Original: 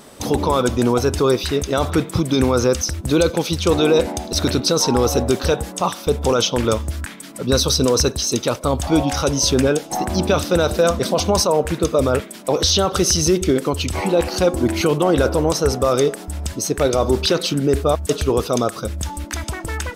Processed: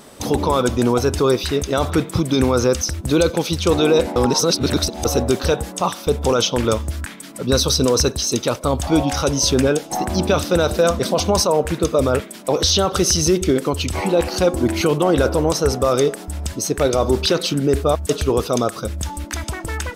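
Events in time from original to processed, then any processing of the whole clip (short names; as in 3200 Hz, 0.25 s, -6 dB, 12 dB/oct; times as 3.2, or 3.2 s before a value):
4.16–5.05 reverse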